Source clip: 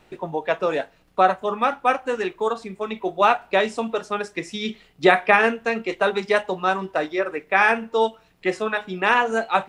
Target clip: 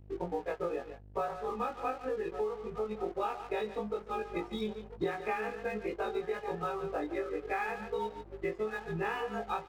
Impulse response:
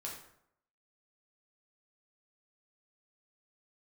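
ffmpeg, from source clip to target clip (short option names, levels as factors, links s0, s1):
-filter_complex "[0:a]afftfilt=real='re':imag='-im':win_size=2048:overlap=0.75,aecho=1:1:2.4:0.53,asplit=2[s0][s1];[s1]adelay=1140,lowpass=f=2100:p=1,volume=0.141,asplit=2[s2][s3];[s3]adelay=1140,lowpass=f=2100:p=1,volume=0.36,asplit=2[s4][s5];[s5]adelay=1140,lowpass=f=2100:p=1,volume=0.36[s6];[s2][s4][s6]amix=inputs=3:normalize=0[s7];[s0][s7]amix=inputs=2:normalize=0,afftdn=nr=19:nf=-34,equalizer=f=1700:w=0.42:g=-6,aeval=exprs='val(0)+0.00141*(sin(2*PI*50*n/s)+sin(2*PI*2*50*n/s)/2+sin(2*PI*3*50*n/s)/3+sin(2*PI*4*50*n/s)/4+sin(2*PI*5*50*n/s)/5)':c=same,bass=f=250:g=7,treble=f=4000:g=-9,asplit=2[s8][s9];[s9]aecho=0:1:143:0.188[s10];[s8][s10]amix=inputs=2:normalize=0,acompressor=threshold=0.0178:ratio=6,aeval=exprs='sgn(val(0))*max(abs(val(0))-0.00168,0)':c=same,volume=1.5"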